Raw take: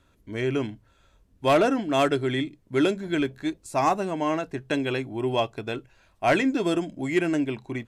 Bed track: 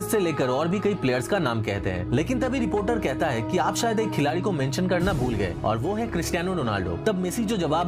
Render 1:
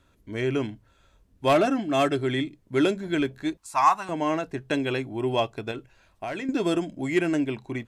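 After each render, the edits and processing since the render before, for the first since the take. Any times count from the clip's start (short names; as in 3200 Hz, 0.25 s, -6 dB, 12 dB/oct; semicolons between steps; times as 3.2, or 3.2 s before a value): 1.53–2.19 notch comb 480 Hz; 3.57–4.09 resonant low shelf 690 Hz -12 dB, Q 3; 5.71–6.49 compressor 8:1, threshold -29 dBFS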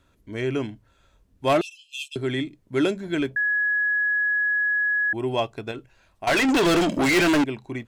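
1.61–2.16 brick-wall FIR high-pass 2400 Hz; 3.36–5.13 bleep 1680 Hz -19.5 dBFS; 6.27–7.44 overdrive pedal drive 33 dB, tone 6400 Hz, clips at -13 dBFS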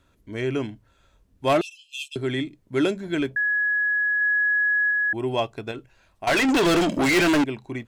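4.21–4.91 high shelf 3900 Hz +9.5 dB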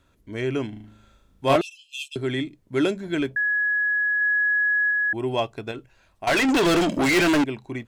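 0.69–1.56 flutter echo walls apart 6.4 m, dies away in 0.73 s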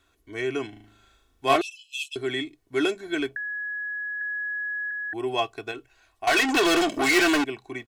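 low shelf 400 Hz -10.5 dB; comb 2.7 ms, depth 67%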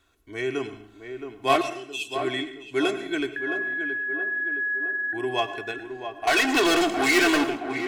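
on a send: tape echo 0.669 s, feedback 63%, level -7 dB, low-pass 1500 Hz; on the sum: plate-style reverb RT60 0.6 s, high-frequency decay 0.7×, pre-delay 85 ms, DRR 12 dB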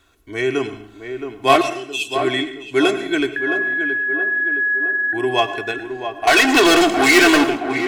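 gain +8 dB; limiter -1 dBFS, peak gain reduction 1 dB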